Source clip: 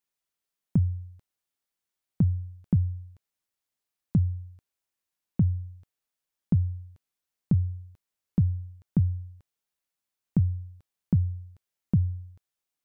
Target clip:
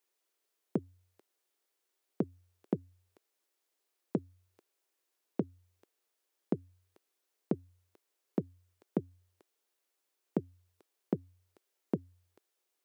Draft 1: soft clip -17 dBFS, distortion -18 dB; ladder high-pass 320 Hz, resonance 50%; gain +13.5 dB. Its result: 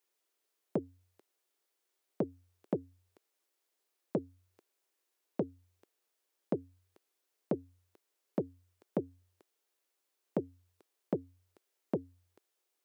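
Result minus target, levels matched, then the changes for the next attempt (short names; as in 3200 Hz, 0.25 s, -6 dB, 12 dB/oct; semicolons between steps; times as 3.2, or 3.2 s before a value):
soft clip: distortion +13 dB
change: soft clip -9.5 dBFS, distortion -30 dB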